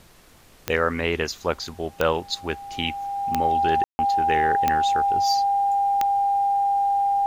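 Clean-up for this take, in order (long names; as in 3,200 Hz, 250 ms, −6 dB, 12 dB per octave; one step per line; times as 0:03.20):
click removal
notch filter 800 Hz, Q 30
ambience match 0:03.84–0:03.99
downward expander −42 dBFS, range −21 dB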